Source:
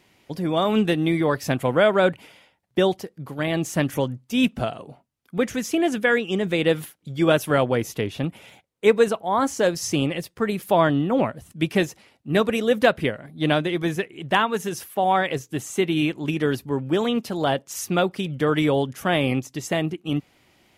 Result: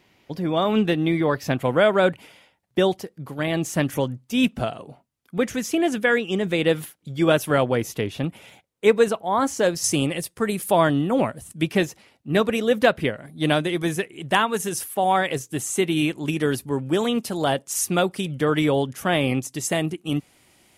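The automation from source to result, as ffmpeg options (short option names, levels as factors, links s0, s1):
-af "asetnsamples=n=441:p=0,asendcmd='1.64 equalizer g 2;9.84 equalizer g 12.5;11.62 equalizer g 1;13.18 equalizer g 10.5;18.4 equalizer g 4;19.42 equalizer g 12.5',equalizer=f=9400:t=o:w=0.95:g=-6.5"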